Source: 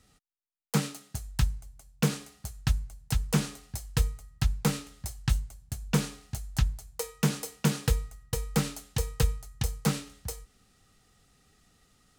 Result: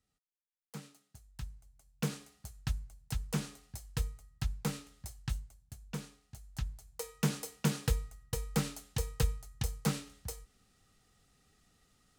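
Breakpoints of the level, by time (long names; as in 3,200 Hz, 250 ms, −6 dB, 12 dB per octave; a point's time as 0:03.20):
0:01.26 −19.5 dB
0:02.03 −8.5 dB
0:05.11 −8.5 dB
0:06.21 −16.5 dB
0:07.16 −5 dB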